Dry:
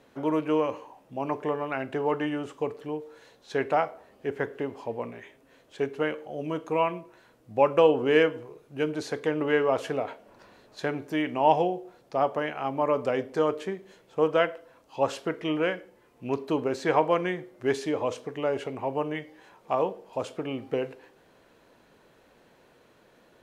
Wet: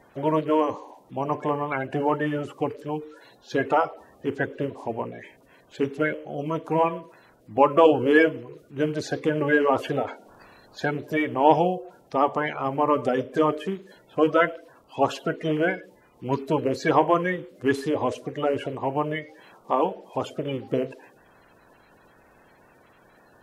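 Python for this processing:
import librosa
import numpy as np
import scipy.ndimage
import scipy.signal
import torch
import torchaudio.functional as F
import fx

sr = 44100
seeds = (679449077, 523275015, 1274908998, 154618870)

y = fx.spec_quant(x, sr, step_db=30)
y = y * 10.0 ** (4.0 / 20.0)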